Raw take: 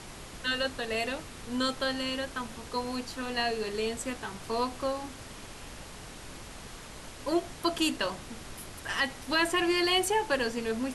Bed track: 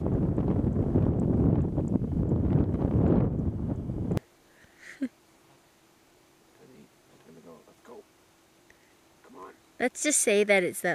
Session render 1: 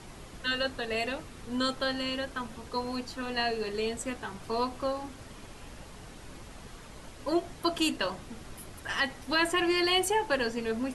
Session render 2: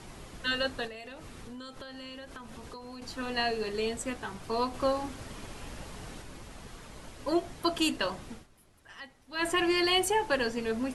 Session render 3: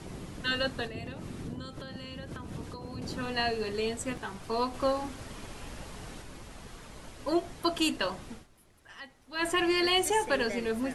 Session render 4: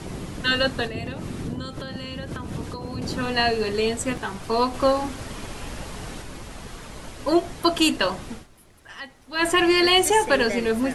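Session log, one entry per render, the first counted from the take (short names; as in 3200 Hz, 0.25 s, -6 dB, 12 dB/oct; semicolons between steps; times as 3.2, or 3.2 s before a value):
denoiser 6 dB, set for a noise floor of -46 dBFS
0.87–3.02 compressor 16:1, threshold -40 dBFS; 4.74–6.22 gain +3.5 dB; 8.32–9.48 dip -17 dB, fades 0.15 s
add bed track -17 dB
gain +8.5 dB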